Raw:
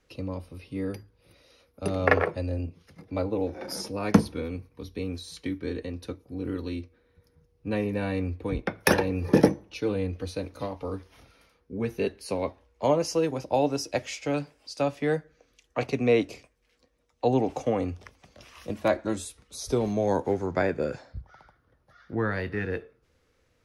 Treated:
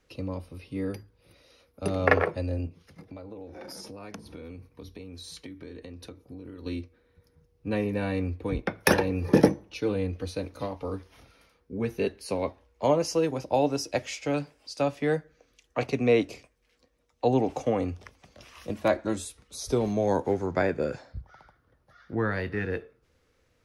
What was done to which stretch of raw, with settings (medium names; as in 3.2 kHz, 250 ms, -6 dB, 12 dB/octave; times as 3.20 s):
2.67–6.66 s: compression 10:1, threshold -38 dBFS